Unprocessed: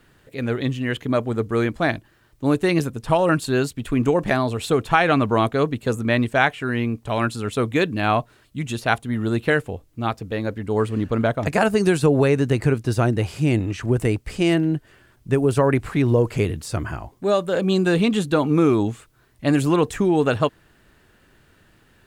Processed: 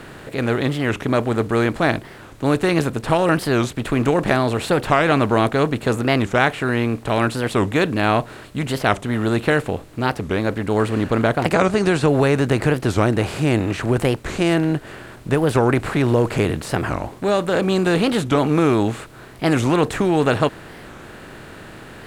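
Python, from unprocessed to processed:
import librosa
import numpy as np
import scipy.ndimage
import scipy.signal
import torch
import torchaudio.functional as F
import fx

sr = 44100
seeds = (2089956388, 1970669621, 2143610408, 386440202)

y = fx.bin_compress(x, sr, power=0.6)
y = fx.lowpass(y, sr, hz=8600.0, slope=12, at=(11.55, 12.08))
y = fx.record_warp(y, sr, rpm=45.0, depth_cents=250.0)
y = F.gain(torch.from_numpy(y), -2.0).numpy()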